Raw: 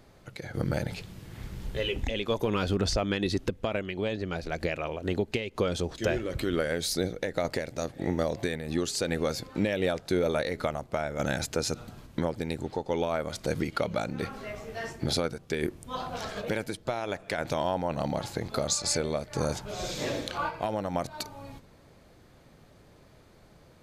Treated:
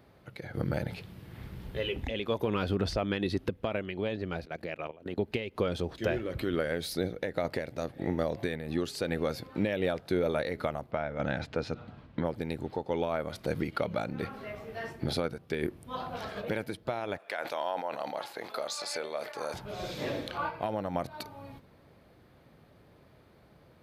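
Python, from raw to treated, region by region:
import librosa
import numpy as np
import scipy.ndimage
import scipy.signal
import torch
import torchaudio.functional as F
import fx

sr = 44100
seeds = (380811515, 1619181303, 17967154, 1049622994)

y = fx.chain(x, sr, fx.highpass(hz=120.0, slope=12),
    fx.level_steps(step_db=17), at=(4.45, 5.18))
y = fx.chain(y, sr, fx.lowpass(hz=3800.0, slope=12),
    fx.notch(hz=370.0, q=8.4), at=(10.91, 12.25))
y = fx.chain(y, sr, fx.highpass(hz=580.0, slope=12),
    fx.sustainer(db_per_s=77.0), at=(17.18, 19.54))
y = scipy.signal.sosfilt(scipy.signal.butter(2, 57.0, 'highpass', fs=sr, output='sos'), y)
y = fx.peak_eq(y, sr, hz=7000.0, db=-12.5, octaves=0.91)
y = y * librosa.db_to_amplitude(-2.0)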